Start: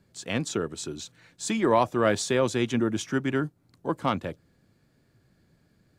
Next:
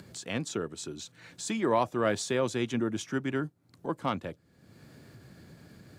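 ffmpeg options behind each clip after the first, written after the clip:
ffmpeg -i in.wav -af "highpass=71,acompressor=mode=upward:threshold=-32dB:ratio=2.5,volume=-4.5dB" out.wav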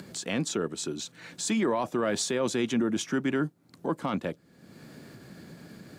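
ffmpeg -i in.wav -af "lowshelf=frequency=140:width_type=q:width=1.5:gain=-6.5,alimiter=level_in=0.5dB:limit=-24dB:level=0:latency=1:release=13,volume=-0.5dB,volume=5.5dB" out.wav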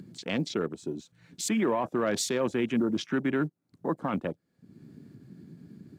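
ffmpeg -i in.wav -af "acrusher=bits=7:mode=log:mix=0:aa=0.000001,afwtdn=0.0112" out.wav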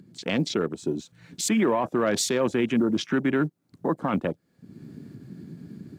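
ffmpeg -i in.wav -af "dynaudnorm=framelen=130:gausssize=3:maxgain=12dB,alimiter=limit=-10dB:level=0:latency=1:release=208,volume=-5dB" out.wav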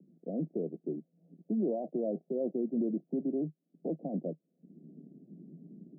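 ffmpeg -i in.wav -af "asuperpass=centerf=330:order=20:qfactor=0.58,volume=-8.5dB" out.wav

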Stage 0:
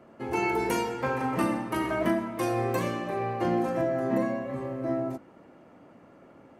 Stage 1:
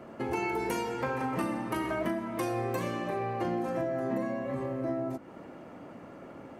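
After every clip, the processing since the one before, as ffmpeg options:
ffmpeg -i in.wav -af "acompressor=threshold=-39dB:ratio=3,volume=6.5dB" out.wav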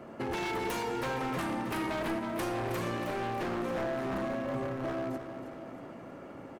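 ffmpeg -i in.wav -af "aeval=exprs='0.0376*(abs(mod(val(0)/0.0376+3,4)-2)-1)':channel_layout=same,aecho=1:1:318|636|954|1272|1590|1908:0.335|0.181|0.0977|0.0527|0.0285|0.0154" out.wav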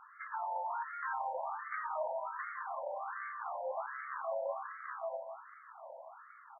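ffmpeg -i in.wav -af "lowpass=2600,afftfilt=real='re*between(b*sr/1024,690*pow(1600/690,0.5+0.5*sin(2*PI*1.3*pts/sr))/1.41,690*pow(1600/690,0.5+0.5*sin(2*PI*1.3*pts/sr))*1.41)':imag='im*between(b*sr/1024,690*pow(1600/690,0.5+0.5*sin(2*PI*1.3*pts/sr))/1.41,690*pow(1600/690,0.5+0.5*sin(2*PI*1.3*pts/sr))*1.41)':win_size=1024:overlap=0.75,volume=1.5dB" out.wav

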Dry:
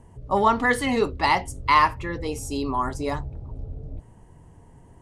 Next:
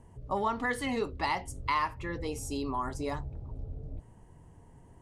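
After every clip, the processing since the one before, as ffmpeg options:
ffmpeg -i in.wav -af "acompressor=threshold=-26dB:ratio=2,volume=-5dB" out.wav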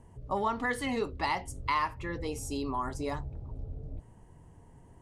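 ffmpeg -i in.wav -af anull out.wav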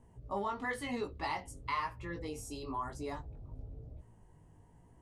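ffmpeg -i in.wav -af "flanger=delay=16.5:depth=3.7:speed=1,volume=-3dB" out.wav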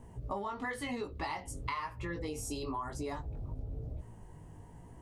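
ffmpeg -i in.wav -af "acompressor=threshold=-44dB:ratio=6,volume=9dB" out.wav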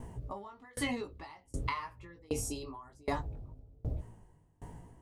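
ffmpeg -i in.wav -af "aeval=exprs='val(0)*pow(10,-31*if(lt(mod(1.3*n/s,1),2*abs(1.3)/1000),1-mod(1.3*n/s,1)/(2*abs(1.3)/1000),(mod(1.3*n/s,1)-2*abs(1.3)/1000)/(1-2*abs(1.3)/1000))/20)':channel_layout=same,volume=8.5dB" out.wav

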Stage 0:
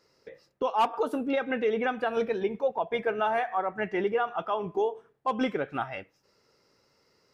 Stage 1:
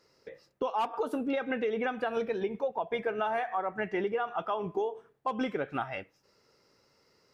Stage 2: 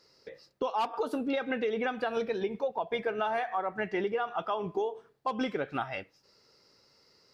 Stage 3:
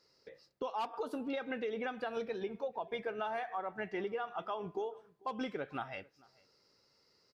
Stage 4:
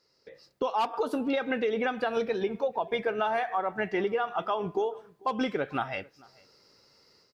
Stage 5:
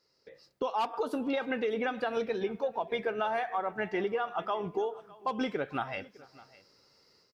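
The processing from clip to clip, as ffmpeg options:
ffmpeg -i in.wav -af "acompressor=threshold=-27dB:ratio=6" out.wav
ffmpeg -i in.wav -af "equalizer=frequency=4500:width=2:gain=8.5" out.wav
ffmpeg -i in.wav -filter_complex "[0:a]asplit=2[link_01][link_02];[link_02]adelay=443.1,volume=-25dB,highshelf=frequency=4000:gain=-9.97[link_03];[link_01][link_03]amix=inputs=2:normalize=0,volume=-7dB" out.wav
ffmpeg -i in.wav -af "dynaudnorm=framelen=240:gausssize=3:maxgain=9.5dB" out.wav
ffmpeg -i in.wav -af "aecho=1:1:607:0.0841,volume=-3dB" out.wav

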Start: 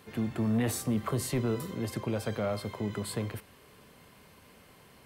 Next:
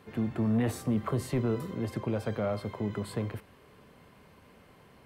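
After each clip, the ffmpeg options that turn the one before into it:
ffmpeg -i in.wav -af "highshelf=frequency=3200:gain=-11,volume=1dB" out.wav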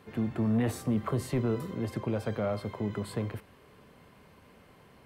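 ffmpeg -i in.wav -af anull out.wav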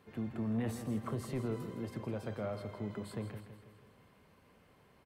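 ffmpeg -i in.wav -af "aecho=1:1:163|326|489|652|815|978:0.299|0.158|0.0839|0.0444|0.0236|0.0125,volume=-8dB" out.wav

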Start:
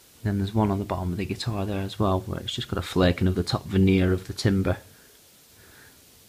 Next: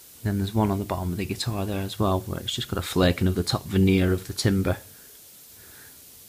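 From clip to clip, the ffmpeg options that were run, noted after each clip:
ffmpeg -i in.wav -af "highshelf=frequency=7000:gain=11" out.wav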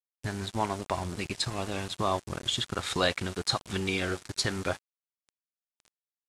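ffmpeg -i in.wav -filter_complex "[0:a]acrossover=split=560[link_01][link_02];[link_01]acompressor=threshold=-32dB:ratio=8[link_03];[link_03][link_02]amix=inputs=2:normalize=0,aeval=exprs='val(0)*gte(abs(val(0)),0.0168)':channel_layout=same,lowpass=frequency=9300:width=0.5412,lowpass=frequency=9300:width=1.3066" out.wav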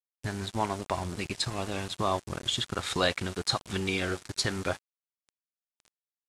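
ffmpeg -i in.wav -af anull out.wav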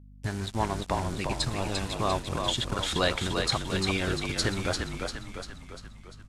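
ffmpeg -i in.wav -filter_complex "[0:a]lowshelf=frequency=110:gain=5.5,aeval=exprs='val(0)+0.00355*(sin(2*PI*50*n/s)+sin(2*PI*2*50*n/s)/2+sin(2*PI*3*50*n/s)/3+sin(2*PI*4*50*n/s)/4+sin(2*PI*5*50*n/s)/5)':channel_layout=same,asplit=8[link_01][link_02][link_03][link_04][link_05][link_06][link_07][link_08];[link_02]adelay=346,afreqshift=-40,volume=-4.5dB[link_09];[link_03]adelay=692,afreqshift=-80,volume=-9.9dB[link_10];[link_04]adelay=1038,afreqshift=-120,volume=-15.2dB[link_11];[link_05]adelay=1384,afreqshift=-160,volume=-20.6dB[link_12];[link_06]adelay=1730,afreqshift=-200,volume=-25.9dB[link_13];[link_07]adelay=2076,afreqshift=-240,volume=-31.3dB[link_14];[link_08]adelay=2422,afreqshift=-280,volume=-36.6dB[link_15];[link_01][link_09][link_10][link_11][link_12][link_13][link_14][link_15]amix=inputs=8:normalize=0" out.wav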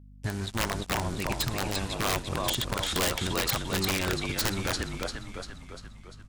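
ffmpeg -i in.wav -af "aeval=exprs='(mod(8.91*val(0)+1,2)-1)/8.91':channel_layout=same" out.wav

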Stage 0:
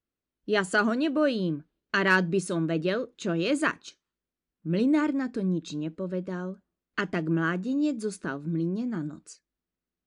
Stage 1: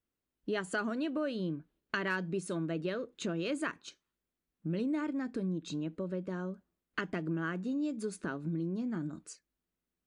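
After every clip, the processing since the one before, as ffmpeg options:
ffmpeg -i in.wav -af "equalizer=frequency=5300:width=1.5:gain=-3,acompressor=threshold=-34dB:ratio=3" out.wav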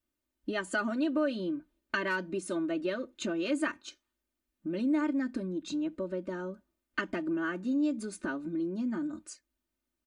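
ffmpeg -i in.wav -af "aecho=1:1:3.3:0.88" out.wav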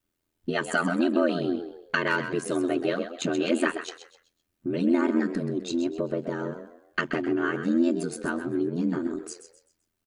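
ffmpeg -i in.wav -filter_complex "[0:a]asplit=5[link_01][link_02][link_03][link_04][link_05];[link_02]adelay=129,afreqshift=52,volume=-10dB[link_06];[link_03]adelay=258,afreqshift=104,volume=-19.4dB[link_07];[link_04]adelay=387,afreqshift=156,volume=-28.7dB[link_08];[link_05]adelay=516,afreqshift=208,volume=-38.1dB[link_09];[link_01][link_06][link_07][link_08][link_09]amix=inputs=5:normalize=0,aeval=exprs='val(0)*sin(2*PI*42*n/s)':channel_layout=same,volume=8.5dB" out.wav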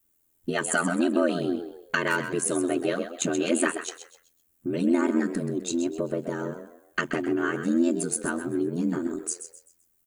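ffmpeg -i in.wav -af "aexciter=amount=3.7:drive=6.8:freq=6600" out.wav

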